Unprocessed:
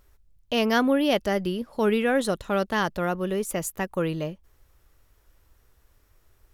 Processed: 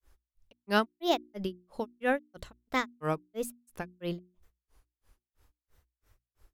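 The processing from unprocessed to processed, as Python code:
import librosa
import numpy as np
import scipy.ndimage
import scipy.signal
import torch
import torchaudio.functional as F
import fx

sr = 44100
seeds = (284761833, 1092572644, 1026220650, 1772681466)

y = fx.granulator(x, sr, seeds[0], grain_ms=199.0, per_s=3.0, spray_ms=20.0, spread_st=3)
y = fx.hum_notches(y, sr, base_hz=60, count=6)
y = F.gain(torch.from_numpy(y), -2.0).numpy()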